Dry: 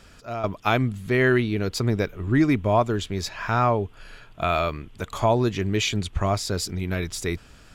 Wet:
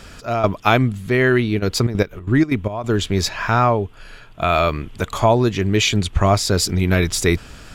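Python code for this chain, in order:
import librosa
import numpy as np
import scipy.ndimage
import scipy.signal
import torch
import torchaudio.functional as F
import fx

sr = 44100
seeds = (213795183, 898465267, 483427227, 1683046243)

y = fx.rider(x, sr, range_db=4, speed_s=0.5)
y = fx.step_gate(y, sr, bpm=185, pattern='.xx..xxx.x.x.xx', floor_db=-12.0, edge_ms=4.5, at=(1.58, 2.96), fade=0.02)
y = y * librosa.db_to_amplitude(6.5)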